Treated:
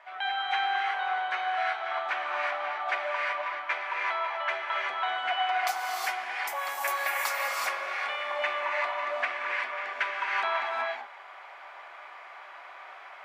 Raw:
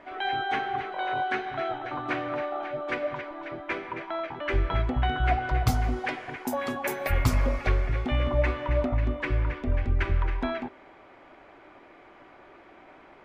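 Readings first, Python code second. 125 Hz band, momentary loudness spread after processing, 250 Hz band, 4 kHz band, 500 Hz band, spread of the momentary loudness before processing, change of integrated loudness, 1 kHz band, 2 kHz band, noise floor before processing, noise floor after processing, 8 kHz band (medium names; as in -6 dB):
under -40 dB, 17 LU, under -25 dB, +4.5 dB, -5.0 dB, 8 LU, -1.0 dB, +2.5 dB, +4.0 dB, -52 dBFS, -47 dBFS, +3.5 dB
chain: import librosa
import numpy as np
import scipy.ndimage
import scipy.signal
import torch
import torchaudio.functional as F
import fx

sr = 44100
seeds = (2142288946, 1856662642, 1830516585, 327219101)

y = scipy.signal.sosfilt(scipy.signal.butter(4, 750.0, 'highpass', fs=sr, output='sos'), x)
y = fx.rev_gated(y, sr, seeds[0], gate_ms=400, shape='rising', drr_db=-2.0)
y = fx.rider(y, sr, range_db=10, speed_s=2.0)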